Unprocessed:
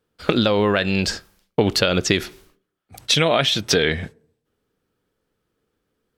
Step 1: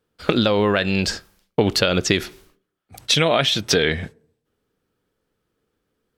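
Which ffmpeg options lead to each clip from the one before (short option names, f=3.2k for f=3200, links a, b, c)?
-af anull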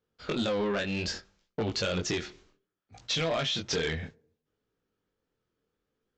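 -af "flanger=delay=18:depth=6.8:speed=0.63,aresample=16000,asoftclip=type=tanh:threshold=-18.5dB,aresample=44100,volume=-5.5dB"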